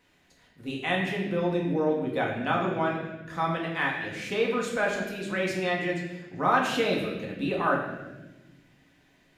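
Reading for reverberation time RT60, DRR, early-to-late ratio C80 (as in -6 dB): 1.1 s, -2.5 dB, 5.5 dB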